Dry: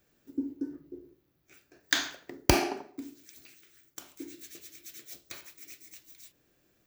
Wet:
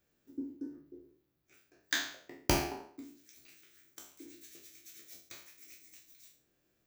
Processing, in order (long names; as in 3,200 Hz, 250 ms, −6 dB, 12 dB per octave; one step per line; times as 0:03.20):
peak hold with a decay on every bin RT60 0.47 s
0:03.48–0:04.26: multiband upward and downward compressor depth 40%
level −8.5 dB